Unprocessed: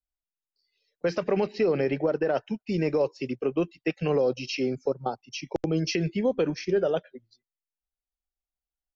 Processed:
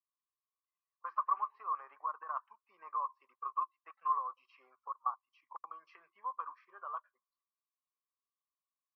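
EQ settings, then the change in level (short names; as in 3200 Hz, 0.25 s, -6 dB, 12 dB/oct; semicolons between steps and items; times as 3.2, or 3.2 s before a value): Butterworth band-pass 1100 Hz, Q 7.8; air absorption 120 m; tilt +4 dB/oct; +13.0 dB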